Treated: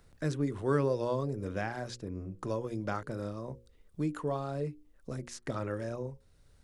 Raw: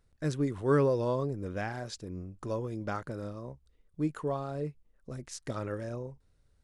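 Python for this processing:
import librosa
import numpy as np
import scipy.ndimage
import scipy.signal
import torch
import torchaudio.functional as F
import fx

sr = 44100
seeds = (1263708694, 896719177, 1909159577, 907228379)

y = fx.hum_notches(x, sr, base_hz=60, count=9)
y = fx.band_squash(y, sr, depth_pct=40)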